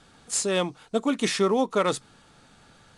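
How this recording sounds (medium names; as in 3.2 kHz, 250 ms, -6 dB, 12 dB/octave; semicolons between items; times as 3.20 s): IMA ADPCM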